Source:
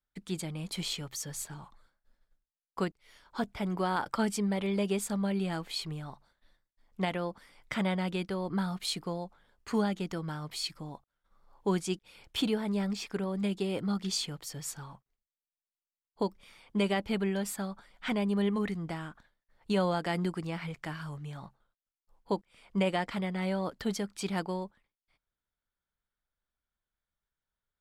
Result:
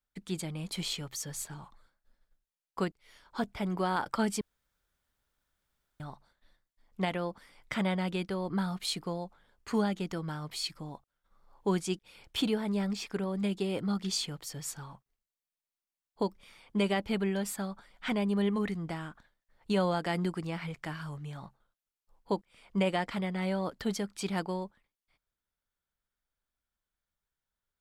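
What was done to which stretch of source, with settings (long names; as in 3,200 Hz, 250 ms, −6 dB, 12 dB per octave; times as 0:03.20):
0:04.41–0:06.00: fill with room tone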